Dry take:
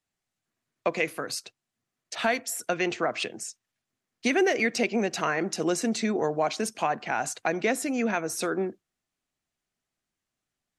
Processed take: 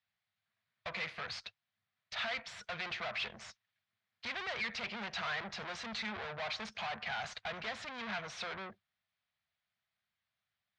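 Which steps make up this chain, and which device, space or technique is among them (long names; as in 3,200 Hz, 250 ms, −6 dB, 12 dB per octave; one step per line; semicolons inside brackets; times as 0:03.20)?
scooped metal amplifier (tube saturation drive 38 dB, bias 0.75; loudspeaker in its box 91–3,700 Hz, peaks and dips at 100 Hz +6 dB, 210 Hz +8 dB, 650 Hz +3 dB, 2,800 Hz −5 dB; guitar amp tone stack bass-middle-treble 10-0-10)
level +11 dB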